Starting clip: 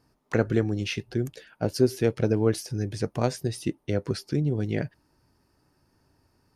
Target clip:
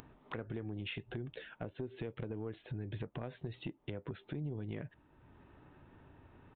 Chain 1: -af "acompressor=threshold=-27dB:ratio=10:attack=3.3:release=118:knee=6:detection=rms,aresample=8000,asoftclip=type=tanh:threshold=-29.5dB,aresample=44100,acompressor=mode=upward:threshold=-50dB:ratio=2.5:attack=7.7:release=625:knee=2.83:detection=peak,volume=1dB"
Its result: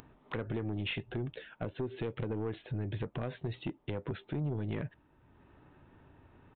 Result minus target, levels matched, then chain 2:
compressor: peak gain reduction -8 dB
-af "acompressor=threshold=-36dB:ratio=10:attack=3.3:release=118:knee=6:detection=rms,aresample=8000,asoftclip=type=tanh:threshold=-29.5dB,aresample=44100,acompressor=mode=upward:threshold=-50dB:ratio=2.5:attack=7.7:release=625:knee=2.83:detection=peak,volume=1dB"

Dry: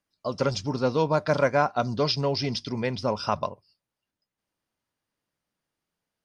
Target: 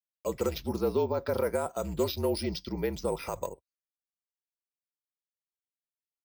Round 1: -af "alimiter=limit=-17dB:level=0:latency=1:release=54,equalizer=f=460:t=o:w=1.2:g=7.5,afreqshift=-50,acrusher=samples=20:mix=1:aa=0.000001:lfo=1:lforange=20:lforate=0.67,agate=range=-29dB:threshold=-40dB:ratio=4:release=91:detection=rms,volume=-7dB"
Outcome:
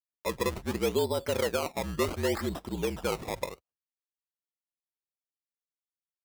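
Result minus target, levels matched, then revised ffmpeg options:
decimation with a swept rate: distortion +12 dB
-af "alimiter=limit=-17dB:level=0:latency=1:release=54,equalizer=f=460:t=o:w=1.2:g=7.5,afreqshift=-50,acrusher=samples=4:mix=1:aa=0.000001:lfo=1:lforange=4:lforate=0.67,agate=range=-29dB:threshold=-40dB:ratio=4:release=91:detection=rms,volume=-7dB"

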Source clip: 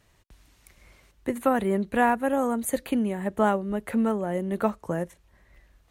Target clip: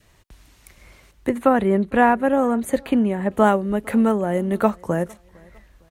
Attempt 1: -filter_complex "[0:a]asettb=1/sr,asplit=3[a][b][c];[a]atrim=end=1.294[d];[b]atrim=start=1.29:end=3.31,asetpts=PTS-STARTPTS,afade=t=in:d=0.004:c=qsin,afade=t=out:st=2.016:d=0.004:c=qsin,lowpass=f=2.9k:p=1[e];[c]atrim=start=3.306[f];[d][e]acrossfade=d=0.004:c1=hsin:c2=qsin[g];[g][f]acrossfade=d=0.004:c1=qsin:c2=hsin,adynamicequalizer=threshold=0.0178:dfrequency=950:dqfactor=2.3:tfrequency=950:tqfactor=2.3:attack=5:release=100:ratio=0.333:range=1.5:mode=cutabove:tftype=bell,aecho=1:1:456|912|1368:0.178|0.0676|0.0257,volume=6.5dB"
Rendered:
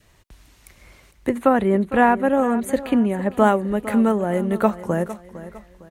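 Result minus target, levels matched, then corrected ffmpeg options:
echo-to-direct +12 dB
-filter_complex "[0:a]asettb=1/sr,asplit=3[a][b][c];[a]atrim=end=1.294[d];[b]atrim=start=1.29:end=3.31,asetpts=PTS-STARTPTS,afade=t=in:d=0.004:c=qsin,afade=t=out:st=2.016:d=0.004:c=qsin,lowpass=f=2.9k:p=1[e];[c]atrim=start=3.306[f];[d][e]acrossfade=d=0.004:c1=hsin:c2=qsin[g];[g][f]acrossfade=d=0.004:c1=qsin:c2=hsin,adynamicequalizer=threshold=0.0178:dfrequency=950:dqfactor=2.3:tfrequency=950:tqfactor=2.3:attack=5:release=100:ratio=0.333:range=1.5:mode=cutabove:tftype=bell,aecho=1:1:456|912:0.0447|0.017,volume=6.5dB"

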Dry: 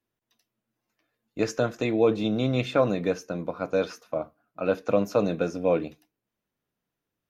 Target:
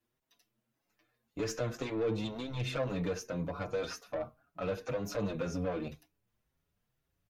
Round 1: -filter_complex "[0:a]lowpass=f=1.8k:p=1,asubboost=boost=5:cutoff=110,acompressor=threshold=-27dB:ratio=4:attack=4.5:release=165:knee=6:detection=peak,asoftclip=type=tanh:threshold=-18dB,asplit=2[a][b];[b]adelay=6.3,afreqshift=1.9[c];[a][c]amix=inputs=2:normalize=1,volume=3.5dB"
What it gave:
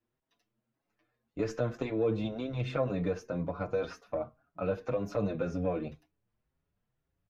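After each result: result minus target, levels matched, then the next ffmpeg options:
soft clip: distortion -15 dB; 2000 Hz band -3.5 dB
-filter_complex "[0:a]lowpass=f=1.8k:p=1,asubboost=boost=5:cutoff=110,acompressor=threshold=-27dB:ratio=4:attack=4.5:release=165:knee=6:detection=peak,asoftclip=type=tanh:threshold=-29dB,asplit=2[a][b];[b]adelay=6.3,afreqshift=1.9[c];[a][c]amix=inputs=2:normalize=1,volume=3.5dB"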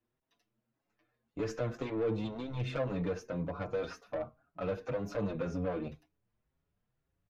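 2000 Hz band -2.0 dB
-filter_complex "[0:a]asubboost=boost=5:cutoff=110,acompressor=threshold=-27dB:ratio=4:attack=4.5:release=165:knee=6:detection=peak,asoftclip=type=tanh:threshold=-29dB,asplit=2[a][b];[b]adelay=6.3,afreqshift=1.9[c];[a][c]amix=inputs=2:normalize=1,volume=3.5dB"

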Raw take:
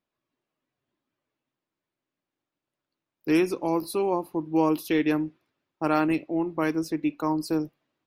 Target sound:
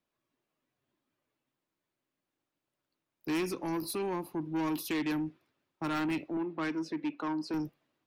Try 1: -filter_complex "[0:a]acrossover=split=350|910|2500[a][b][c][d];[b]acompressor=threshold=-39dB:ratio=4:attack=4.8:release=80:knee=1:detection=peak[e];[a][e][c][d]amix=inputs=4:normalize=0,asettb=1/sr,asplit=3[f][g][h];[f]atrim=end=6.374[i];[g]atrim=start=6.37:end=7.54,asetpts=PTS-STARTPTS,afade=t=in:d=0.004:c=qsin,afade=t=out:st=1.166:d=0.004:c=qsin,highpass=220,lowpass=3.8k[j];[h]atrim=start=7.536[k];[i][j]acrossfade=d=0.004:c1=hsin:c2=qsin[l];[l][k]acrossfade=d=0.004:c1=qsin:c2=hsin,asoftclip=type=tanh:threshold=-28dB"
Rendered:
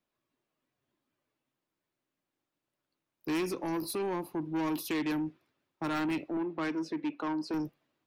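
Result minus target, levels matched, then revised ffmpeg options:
compressor: peak gain reduction -8 dB
-filter_complex "[0:a]acrossover=split=350|910|2500[a][b][c][d];[b]acompressor=threshold=-49.5dB:ratio=4:attack=4.8:release=80:knee=1:detection=peak[e];[a][e][c][d]amix=inputs=4:normalize=0,asettb=1/sr,asplit=3[f][g][h];[f]atrim=end=6.374[i];[g]atrim=start=6.37:end=7.54,asetpts=PTS-STARTPTS,afade=t=in:d=0.004:c=qsin,afade=t=out:st=1.166:d=0.004:c=qsin,highpass=220,lowpass=3.8k[j];[h]atrim=start=7.536[k];[i][j]acrossfade=d=0.004:c1=hsin:c2=qsin[l];[l][k]acrossfade=d=0.004:c1=qsin:c2=hsin,asoftclip=type=tanh:threshold=-28dB"

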